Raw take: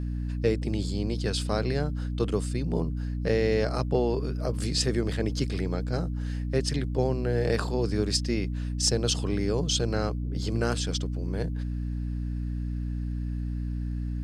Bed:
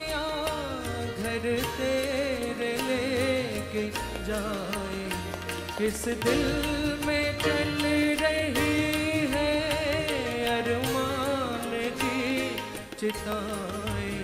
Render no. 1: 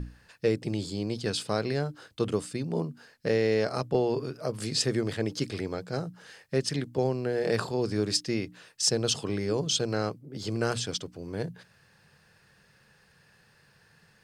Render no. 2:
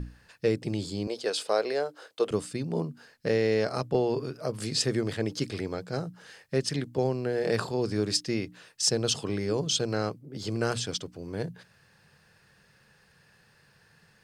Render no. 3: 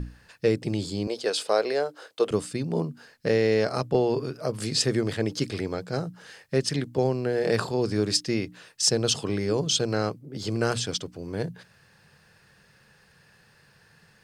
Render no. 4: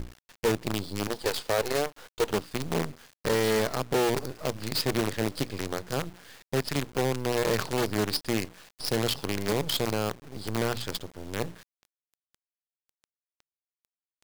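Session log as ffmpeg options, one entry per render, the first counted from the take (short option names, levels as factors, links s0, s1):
-af "bandreject=f=60:t=h:w=6,bandreject=f=120:t=h:w=6,bandreject=f=180:t=h:w=6,bandreject=f=240:t=h:w=6,bandreject=f=300:t=h:w=6"
-filter_complex "[0:a]asettb=1/sr,asplit=3[s0][s1][s2];[s0]atrim=end=1.074[s3];[s1]atrim=start=1.07:end=2.31,asetpts=PTS-STARTPTS,afade=t=in:d=0.004:c=qsin,afade=t=out:st=1.236:d=0.004:c=qsin,highpass=f=500:t=q:w=1.9[s4];[s2]atrim=start=2.306[s5];[s3][s4]acrossfade=d=0.004:c1=hsin:c2=qsin[s6];[s6][s5]acrossfade=d=0.004:c1=qsin:c2=hsin"
-af "volume=1.41"
-af "aresample=11025,asoftclip=type=tanh:threshold=0.0891,aresample=44100,acrusher=bits=5:dc=4:mix=0:aa=0.000001"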